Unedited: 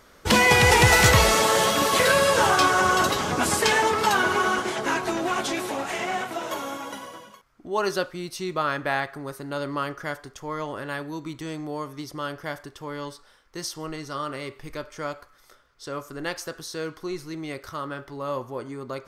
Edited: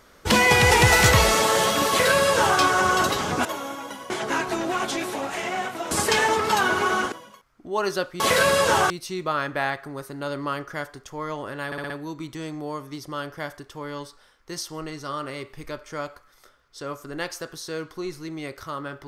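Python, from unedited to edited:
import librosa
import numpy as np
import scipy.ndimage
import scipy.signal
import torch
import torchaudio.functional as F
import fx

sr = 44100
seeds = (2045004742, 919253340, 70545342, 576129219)

y = fx.edit(x, sr, fx.duplicate(start_s=1.89, length_s=0.7, to_s=8.2),
    fx.swap(start_s=3.45, length_s=1.21, other_s=6.47, other_length_s=0.65),
    fx.stutter(start_s=10.96, slice_s=0.06, count=5), tone=tone)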